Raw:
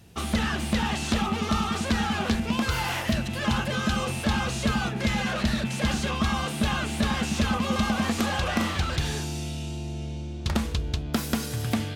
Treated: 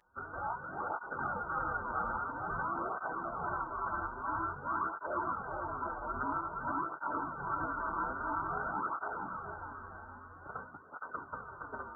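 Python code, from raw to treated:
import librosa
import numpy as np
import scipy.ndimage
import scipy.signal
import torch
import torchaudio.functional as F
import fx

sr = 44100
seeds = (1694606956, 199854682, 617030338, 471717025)

y = scipy.signal.sosfilt(scipy.signal.butter(4, 960.0, 'highpass', fs=sr, output='sos'), x)
y = fx.tilt_shelf(y, sr, db=7.0, hz=1300.0)
y = fx.freq_invert(y, sr, carrier_hz=2600)
y = fx.pitch_keep_formants(y, sr, semitones=-7.5)
y = fx.echo_feedback(y, sr, ms=463, feedback_pct=47, wet_db=-3.0)
y = fx.flanger_cancel(y, sr, hz=0.5, depth_ms=7.7)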